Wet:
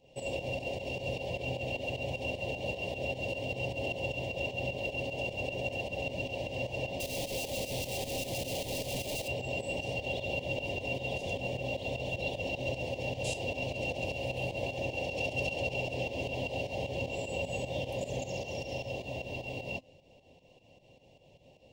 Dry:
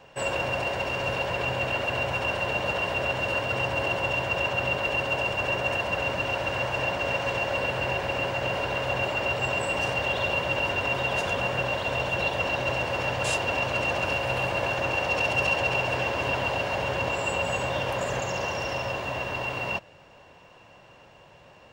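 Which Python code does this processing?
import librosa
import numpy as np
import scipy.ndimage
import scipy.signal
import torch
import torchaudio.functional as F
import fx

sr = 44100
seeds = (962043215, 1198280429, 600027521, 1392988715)

y = fx.clip_1bit(x, sr, at=(7.0, 9.28))
y = scipy.signal.sosfilt(scipy.signal.cheby1(2, 1.0, [640.0, 2900.0], 'bandstop', fs=sr, output='sos'), y)
y = fx.low_shelf(y, sr, hz=410.0, db=5.0)
y = fx.comb_fb(y, sr, f0_hz=260.0, decay_s=0.23, harmonics='all', damping=0.0, mix_pct=60)
y = fx.volume_shaper(y, sr, bpm=153, per_beat=2, depth_db=-11, release_ms=131.0, shape='fast start')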